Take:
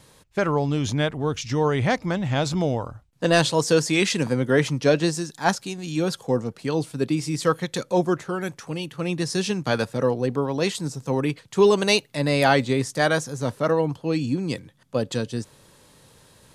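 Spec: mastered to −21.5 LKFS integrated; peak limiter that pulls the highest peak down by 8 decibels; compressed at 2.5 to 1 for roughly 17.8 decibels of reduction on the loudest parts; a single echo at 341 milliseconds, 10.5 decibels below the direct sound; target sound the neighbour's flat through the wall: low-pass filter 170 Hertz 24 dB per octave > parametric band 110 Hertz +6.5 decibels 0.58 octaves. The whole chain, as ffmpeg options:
ffmpeg -i in.wav -af "acompressor=threshold=-41dB:ratio=2.5,alimiter=level_in=4dB:limit=-24dB:level=0:latency=1,volume=-4dB,lowpass=frequency=170:width=0.5412,lowpass=frequency=170:width=1.3066,equalizer=frequency=110:width_type=o:width=0.58:gain=6.5,aecho=1:1:341:0.299,volume=22.5dB" out.wav

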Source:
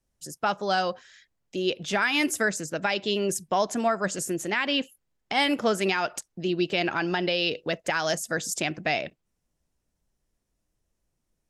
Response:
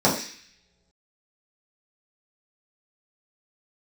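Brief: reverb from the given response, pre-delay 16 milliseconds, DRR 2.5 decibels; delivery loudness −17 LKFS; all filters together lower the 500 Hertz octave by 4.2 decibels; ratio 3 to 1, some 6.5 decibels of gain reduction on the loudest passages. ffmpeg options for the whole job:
-filter_complex "[0:a]equalizer=frequency=500:width_type=o:gain=-6,acompressor=threshold=-30dB:ratio=3,asplit=2[link_01][link_02];[1:a]atrim=start_sample=2205,adelay=16[link_03];[link_02][link_03]afir=irnorm=-1:irlink=0,volume=-21dB[link_04];[link_01][link_04]amix=inputs=2:normalize=0,volume=13.5dB"

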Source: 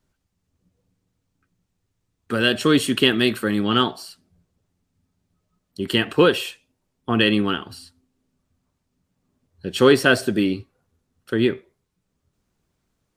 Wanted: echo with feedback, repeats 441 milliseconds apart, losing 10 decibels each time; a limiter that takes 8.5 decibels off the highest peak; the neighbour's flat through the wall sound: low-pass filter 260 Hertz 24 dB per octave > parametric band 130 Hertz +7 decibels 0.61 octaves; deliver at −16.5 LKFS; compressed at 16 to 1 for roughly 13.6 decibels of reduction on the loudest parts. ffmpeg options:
ffmpeg -i in.wav -af "acompressor=threshold=-23dB:ratio=16,alimiter=limit=-19.5dB:level=0:latency=1,lowpass=frequency=260:width=0.5412,lowpass=frequency=260:width=1.3066,equalizer=frequency=130:width_type=o:width=0.61:gain=7,aecho=1:1:441|882|1323|1764:0.316|0.101|0.0324|0.0104,volume=20.5dB" out.wav

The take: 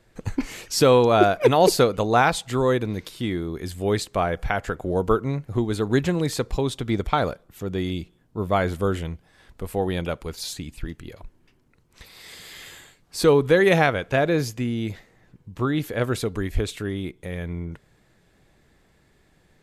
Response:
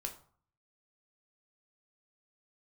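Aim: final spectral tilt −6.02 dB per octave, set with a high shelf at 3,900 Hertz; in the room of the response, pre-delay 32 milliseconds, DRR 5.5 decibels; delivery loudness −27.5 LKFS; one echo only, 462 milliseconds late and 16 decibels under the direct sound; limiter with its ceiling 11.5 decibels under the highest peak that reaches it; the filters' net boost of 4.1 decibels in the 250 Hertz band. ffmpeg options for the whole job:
-filter_complex "[0:a]equalizer=frequency=250:width_type=o:gain=5.5,highshelf=frequency=3900:gain=-5,alimiter=limit=-14dB:level=0:latency=1,aecho=1:1:462:0.158,asplit=2[link_01][link_02];[1:a]atrim=start_sample=2205,adelay=32[link_03];[link_02][link_03]afir=irnorm=-1:irlink=0,volume=-4.5dB[link_04];[link_01][link_04]amix=inputs=2:normalize=0,volume=-3dB"

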